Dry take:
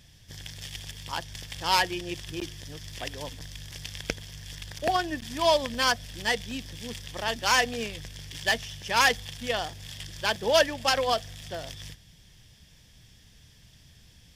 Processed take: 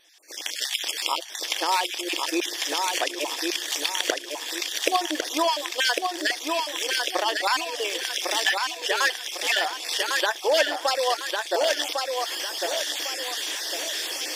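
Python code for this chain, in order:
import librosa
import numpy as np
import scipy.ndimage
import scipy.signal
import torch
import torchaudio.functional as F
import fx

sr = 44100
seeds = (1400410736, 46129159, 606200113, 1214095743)

y = fx.spec_dropout(x, sr, seeds[0], share_pct=33)
y = fx.recorder_agc(y, sr, target_db=-13.5, rise_db_per_s=32.0, max_gain_db=30)
y = fx.brickwall_highpass(y, sr, low_hz=290.0)
y = fx.peak_eq(y, sr, hz=400.0, db=-2.5, octaves=0.36)
y = fx.echo_feedback(y, sr, ms=1102, feedback_pct=37, wet_db=-4.0)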